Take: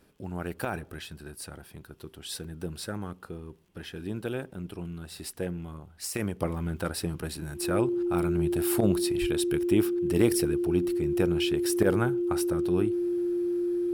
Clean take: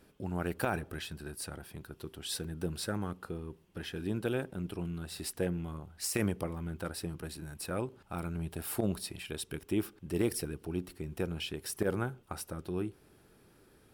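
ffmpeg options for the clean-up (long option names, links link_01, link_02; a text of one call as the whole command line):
ffmpeg -i in.wav -filter_complex "[0:a]adeclick=threshold=4,bandreject=frequency=350:width=30,asplit=3[link_01][link_02][link_03];[link_01]afade=type=out:start_time=9.2:duration=0.02[link_04];[link_02]highpass=frequency=140:width=0.5412,highpass=frequency=140:width=1.3066,afade=type=in:start_time=9.2:duration=0.02,afade=type=out:start_time=9.32:duration=0.02[link_05];[link_03]afade=type=in:start_time=9.32:duration=0.02[link_06];[link_04][link_05][link_06]amix=inputs=3:normalize=0,asetnsamples=nb_out_samples=441:pad=0,asendcmd='6.41 volume volume -7dB',volume=0dB" out.wav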